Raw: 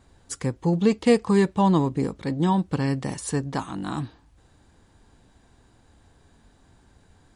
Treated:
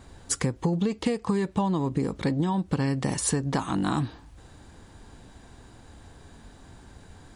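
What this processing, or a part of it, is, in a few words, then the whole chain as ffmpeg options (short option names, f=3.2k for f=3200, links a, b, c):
serial compression, leveller first: -af "acompressor=threshold=-22dB:ratio=2.5,acompressor=threshold=-30dB:ratio=10,volume=8dB"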